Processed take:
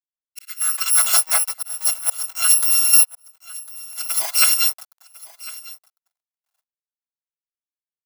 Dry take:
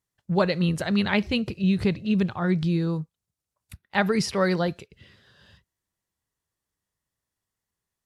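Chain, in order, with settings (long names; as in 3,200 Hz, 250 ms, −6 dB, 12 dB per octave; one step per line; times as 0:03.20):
samples in bit-reversed order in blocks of 256 samples
comb filter 6.1 ms, depth 56%
0:02.93–0:03.97: leveller curve on the samples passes 3
automatic gain control gain up to 13.5 dB
volume swells 409 ms
dead-zone distortion −35.5 dBFS
high-pass filter sweep 2,000 Hz → 830 Hz, 0:00.36–0:01.11
single-tap delay 1,052 ms −19.5 dB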